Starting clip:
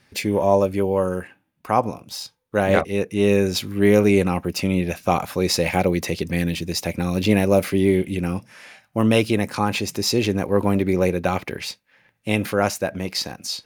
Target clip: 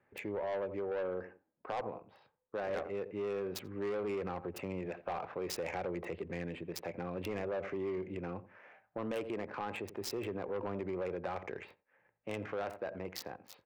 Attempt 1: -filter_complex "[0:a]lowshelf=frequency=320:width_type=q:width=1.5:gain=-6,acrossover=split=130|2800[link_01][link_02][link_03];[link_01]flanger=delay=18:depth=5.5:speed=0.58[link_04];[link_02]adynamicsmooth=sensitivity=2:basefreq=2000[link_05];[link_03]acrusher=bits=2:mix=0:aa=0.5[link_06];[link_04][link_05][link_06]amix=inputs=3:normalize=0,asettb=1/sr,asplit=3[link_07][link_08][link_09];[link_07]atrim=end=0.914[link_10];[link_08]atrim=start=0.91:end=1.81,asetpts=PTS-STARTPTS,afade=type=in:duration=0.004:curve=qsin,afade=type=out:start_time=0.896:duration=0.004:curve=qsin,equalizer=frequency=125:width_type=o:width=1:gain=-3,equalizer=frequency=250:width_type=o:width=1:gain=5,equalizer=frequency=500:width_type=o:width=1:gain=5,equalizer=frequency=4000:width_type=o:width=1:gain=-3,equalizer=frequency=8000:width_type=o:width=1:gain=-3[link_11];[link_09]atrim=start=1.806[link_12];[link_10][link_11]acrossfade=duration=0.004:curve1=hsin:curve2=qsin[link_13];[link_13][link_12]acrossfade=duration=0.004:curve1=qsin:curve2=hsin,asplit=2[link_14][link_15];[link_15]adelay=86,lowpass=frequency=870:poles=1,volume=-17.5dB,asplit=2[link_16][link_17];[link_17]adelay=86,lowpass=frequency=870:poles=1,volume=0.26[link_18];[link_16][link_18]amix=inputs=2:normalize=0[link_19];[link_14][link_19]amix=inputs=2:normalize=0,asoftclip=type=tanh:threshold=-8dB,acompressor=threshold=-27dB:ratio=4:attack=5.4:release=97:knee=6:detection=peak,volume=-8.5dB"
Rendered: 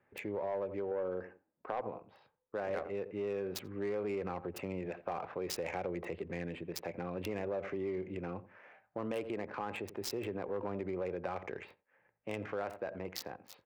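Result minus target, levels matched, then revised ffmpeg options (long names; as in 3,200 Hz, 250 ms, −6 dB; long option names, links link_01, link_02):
soft clipping: distortion −8 dB
-filter_complex "[0:a]lowshelf=frequency=320:width_type=q:width=1.5:gain=-6,acrossover=split=130|2800[link_01][link_02][link_03];[link_01]flanger=delay=18:depth=5.5:speed=0.58[link_04];[link_02]adynamicsmooth=sensitivity=2:basefreq=2000[link_05];[link_03]acrusher=bits=2:mix=0:aa=0.5[link_06];[link_04][link_05][link_06]amix=inputs=3:normalize=0,asettb=1/sr,asplit=3[link_07][link_08][link_09];[link_07]atrim=end=0.914[link_10];[link_08]atrim=start=0.91:end=1.81,asetpts=PTS-STARTPTS,afade=type=in:duration=0.004:curve=qsin,afade=type=out:start_time=0.896:duration=0.004:curve=qsin,equalizer=frequency=125:width_type=o:width=1:gain=-3,equalizer=frequency=250:width_type=o:width=1:gain=5,equalizer=frequency=500:width_type=o:width=1:gain=5,equalizer=frequency=4000:width_type=o:width=1:gain=-3,equalizer=frequency=8000:width_type=o:width=1:gain=-3[link_11];[link_09]atrim=start=1.806[link_12];[link_10][link_11]acrossfade=duration=0.004:curve1=hsin:curve2=qsin[link_13];[link_13][link_12]acrossfade=duration=0.004:curve1=qsin:curve2=hsin,asplit=2[link_14][link_15];[link_15]adelay=86,lowpass=frequency=870:poles=1,volume=-17.5dB,asplit=2[link_16][link_17];[link_17]adelay=86,lowpass=frequency=870:poles=1,volume=0.26[link_18];[link_16][link_18]amix=inputs=2:normalize=0[link_19];[link_14][link_19]amix=inputs=2:normalize=0,asoftclip=type=tanh:threshold=-15.5dB,acompressor=threshold=-27dB:ratio=4:attack=5.4:release=97:knee=6:detection=peak,volume=-8.5dB"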